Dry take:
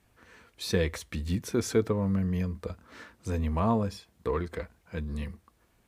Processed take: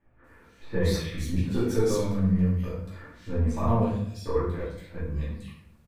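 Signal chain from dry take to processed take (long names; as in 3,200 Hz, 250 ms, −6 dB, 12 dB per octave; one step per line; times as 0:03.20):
gain on one half-wave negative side −3 dB
multiband delay without the direct sound lows, highs 240 ms, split 2,200 Hz
rectangular room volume 150 cubic metres, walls mixed, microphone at 2.5 metres
level −6.5 dB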